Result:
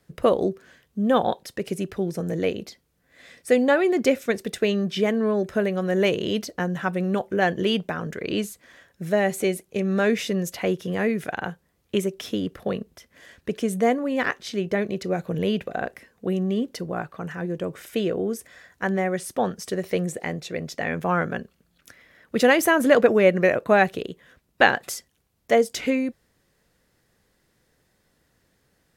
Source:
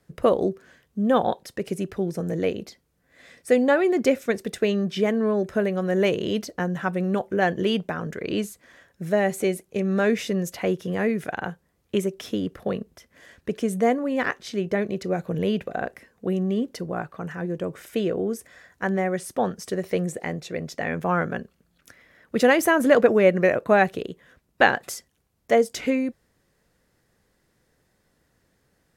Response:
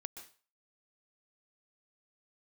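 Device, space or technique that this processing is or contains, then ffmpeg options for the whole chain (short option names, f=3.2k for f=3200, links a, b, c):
presence and air boost: -af "equalizer=f=3.4k:t=o:w=1.4:g=3,highshelf=f=11k:g=4"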